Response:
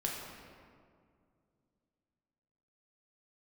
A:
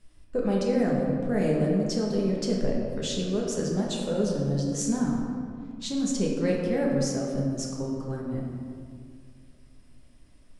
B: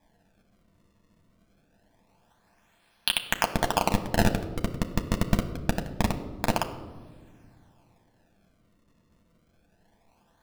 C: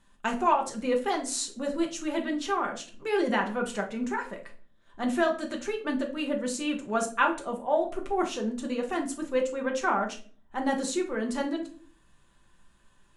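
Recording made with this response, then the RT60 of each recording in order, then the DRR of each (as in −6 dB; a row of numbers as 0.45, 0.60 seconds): A; 2.2, 1.7, 0.45 seconds; −2.5, 4.5, 1.5 decibels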